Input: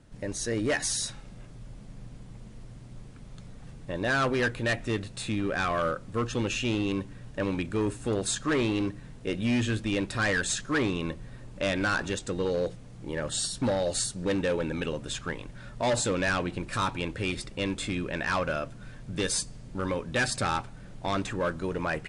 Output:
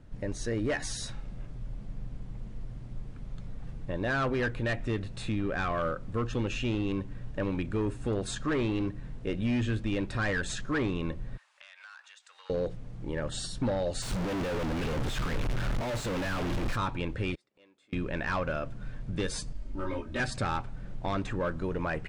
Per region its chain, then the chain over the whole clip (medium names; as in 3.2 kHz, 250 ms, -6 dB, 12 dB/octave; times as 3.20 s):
11.37–12.50 s: Bessel high-pass 1.5 kHz, order 6 + compression 5:1, threshold -47 dBFS
14.02–16.76 s: one-bit comparator + treble shelf 9.2 kHz -4.5 dB
17.35–17.93 s: high-pass 360 Hz + inverted gate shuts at -38 dBFS, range -28 dB
19.53–20.20 s: comb 3.2 ms, depth 76% + detune thickener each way 20 cents
whole clip: low-pass 2.7 kHz 6 dB/octave; bass shelf 71 Hz +10 dB; compression 1.5:1, threshold -31 dBFS